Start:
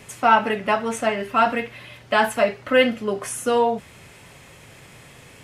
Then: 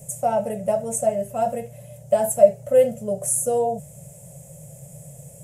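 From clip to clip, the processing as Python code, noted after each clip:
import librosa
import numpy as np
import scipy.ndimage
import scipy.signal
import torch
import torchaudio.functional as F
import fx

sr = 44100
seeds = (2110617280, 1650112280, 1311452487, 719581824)

y = fx.curve_eq(x, sr, hz=(100.0, 150.0, 320.0, 580.0, 1100.0, 4400.0, 7400.0), db=(0, 13, -22, 9, -23, -19, 9))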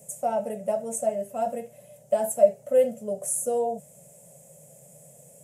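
y = fx.low_shelf_res(x, sr, hz=160.0, db=-14.0, q=1.5)
y = y * 10.0 ** (-5.5 / 20.0)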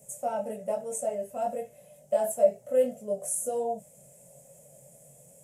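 y = fx.chorus_voices(x, sr, voices=6, hz=0.91, base_ms=22, depth_ms=2.1, mix_pct=45)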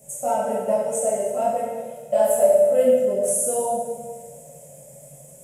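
y = fx.rev_plate(x, sr, seeds[0], rt60_s=1.5, hf_ratio=0.85, predelay_ms=0, drr_db=-4.0)
y = y * 10.0 ** (4.0 / 20.0)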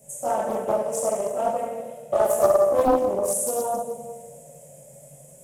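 y = fx.doppler_dist(x, sr, depth_ms=0.62)
y = y * 10.0 ** (-2.0 / 20.0)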